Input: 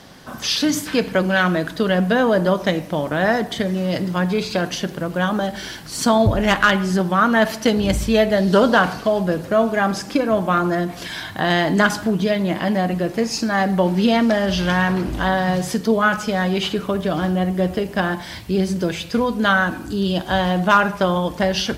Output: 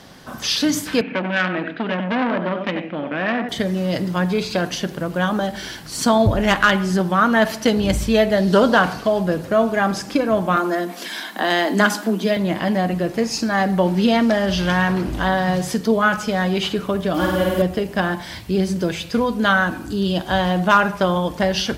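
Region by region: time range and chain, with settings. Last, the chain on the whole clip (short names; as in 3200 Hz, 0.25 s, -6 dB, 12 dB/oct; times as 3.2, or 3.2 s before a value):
1.01–3.49 speaker cabinet 220–2800 Hz, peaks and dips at 250 Hz +7 dB, 420 Hz -5 dB, 630 Hz -4 dB, 1000 Hz -9 dB, 2500 Hz +8 dB + echo 91 ms -8 dB + core saturation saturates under 1300 Hz
10.56–12.37 steep high-pass 190 Hz 96 dB/oct + high shelf 10000 Hz +6.5 dB
17.14–17.62 high shelf 11000 Hz +11.5 dB + comb 3.5 ms, depth 75% + flutter echo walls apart 8.7 m, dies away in 1.3 s
whole clip: dry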